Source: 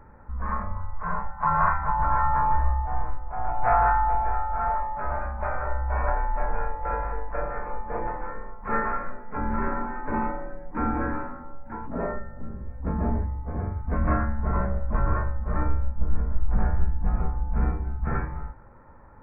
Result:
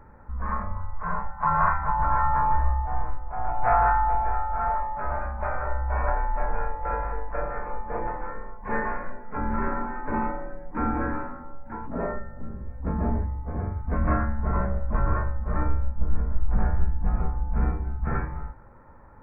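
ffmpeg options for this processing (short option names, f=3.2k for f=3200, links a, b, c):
-filter_complex "[0:a]asettb=1/sr,asplit=3[a][b][c];[a]atrim=end=8.574[d];[b]atrim=start=8.57:end=9.24,asetpts=PTS-STARTPTS,afade=t=in:d=0.004:c=qsin,afade=t=out:st=0.666:d=0.004:c=qsin,asuperstop=centerf=1300:order=8:qfactor=6.7[e];[c]atrim=start=9.236[f];[d][e]acrossfade=d=0.004:c1=hsin:c2=qsin[g];[g][f]acrossfade=d=0.004:c1=qsin:c2=hsin"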